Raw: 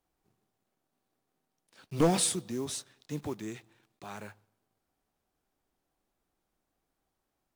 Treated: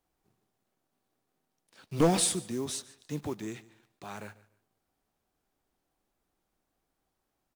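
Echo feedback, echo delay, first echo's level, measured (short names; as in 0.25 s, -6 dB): 26%, 0.145 s, -20.0 dB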